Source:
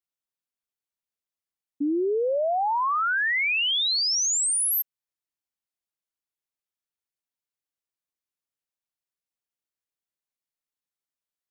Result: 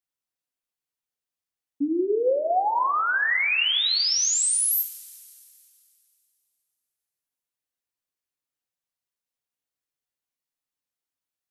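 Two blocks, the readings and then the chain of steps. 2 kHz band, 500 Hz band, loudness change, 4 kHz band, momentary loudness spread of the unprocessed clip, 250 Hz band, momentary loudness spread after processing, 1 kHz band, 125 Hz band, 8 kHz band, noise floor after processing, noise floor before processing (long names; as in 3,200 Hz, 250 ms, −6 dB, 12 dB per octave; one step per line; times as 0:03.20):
+1.0 dB, +1.0 dB, +1.0 dB, +1.0 dB, 5 LU, +0.5 dB, 8 LU, +1.5 dB, can't be measured, +1.5 dB, below −85 dBFS, below −85 dBFS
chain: coupled-rooms reverb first 0.39 s, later 2.7 s, from −18 dB, DRR 5 dB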